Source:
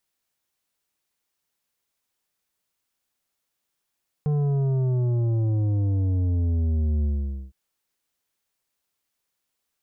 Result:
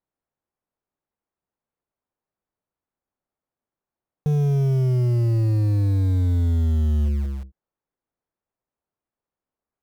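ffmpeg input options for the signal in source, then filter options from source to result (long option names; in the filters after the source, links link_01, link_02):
-f lavfi -i "aevalsrc='0.0891*clip((3.26-t)/0.48,0,1)*tanh(2.82*sin(2*PI*150*3.26/log(65/150)*(exp(log(65/150)*t/3.26)-1)))/tanh(2.82)':duration=3.26:sample_rate=44100"
-filter_complex "[0:a]lowpass=1000,asplit=2[link_01][link_02];[link_02]acrusher=bits=5:mix=0:aa=0.000001,volume=-8dB[link_03];[link_01][link_03]amix=inputs=2:normalize=0"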